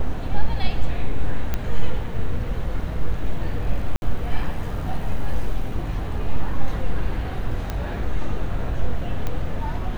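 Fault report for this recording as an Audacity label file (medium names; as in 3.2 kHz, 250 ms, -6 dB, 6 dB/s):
1.540000	1.540000	pop -10 dBFS
3.960000	4.020000	dropout 61 ms
7.700000	7.700000	pop -13 dBFS
9.270000	9.270000	pop -13 dBFS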